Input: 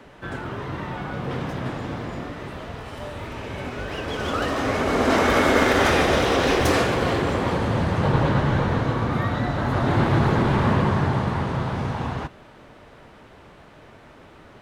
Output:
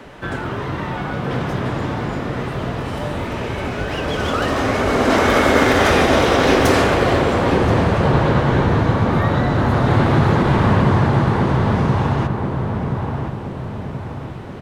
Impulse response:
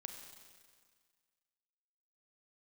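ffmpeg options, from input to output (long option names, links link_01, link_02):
-filter_complex "[0:a]asplit=2[link_01][link_02];[link_02]acompressor=threshold=-30dB:ratio=6,volume=-0.5dB[link_03];[link_01][link_03]amix=inputs=2:normalize=0,asplit=2[link_04][link_05];[link_05]adelay=1027,lowpass=frequency=1200:poles=1,volume=-3.5dB,asplit=2[link_06][link_07];[link_07]adelay=1027,lowpass=frequency=1200:poles=1,volume=0.51,asplit=2[link_08][link_09];[link_09]adelay=1027,lowpass=frequency=1200:poles=1,volume=0.51,asplit=2[link_10][link_11];[link_11]adelay=1027,lowpass=frequency=1200:poles=1,volume=0.51,asplit=2[link_12][link_13];[link_13]adelay=1027,lowpass=frequency=1200:poles=1,volume=0.51,asplit=2[link_14][link_15];[link_15]adelay=1027,lowpass=frequency=1200:poles=1,volume=0.51,asplit=2[link_16][link_17];[link_17]adelay=1027,lowpass=frequency=1200:poles=1,volume=0.51[link_18];[link_04][link_06][link_08][link_10][link_12][link_14][link_16][link_18]amix=inputs=8:normalize=0,volume=2dB"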